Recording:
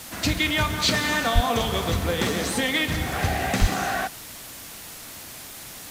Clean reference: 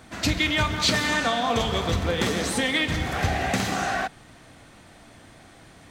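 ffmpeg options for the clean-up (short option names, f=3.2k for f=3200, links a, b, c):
-filter_complex "[0:a]asplit=3[a][b][c];[a]afade=t=out:st=1.34:d=0.02[d];[b]highpass=f=140:w=0.5412,highpass=f=140:w=1.3066,afade=t=in:st=1.34:d=0.02,afade=t=out:st=1.46:d=0.02[e];[c]afade=t=in:st=1.46:d=0.02[f];[d][e][f]amix=inputs=3:normalize=0,asplit=3[g][h][i];[g]afade=t=out:st=3.6:d=0.02[j];[h]highpass=f=140:w=0.5412,highpass=f=140:w=1.3066,afade=t=in:st=3.6:d=0.02,afade=t=out:st=3.72:d=0.02[k];[i]afade=t=in:st=3.72:d=0.02[l];[j][k][l]amix=inputs=3:normalize=0,afwtdn=0.011"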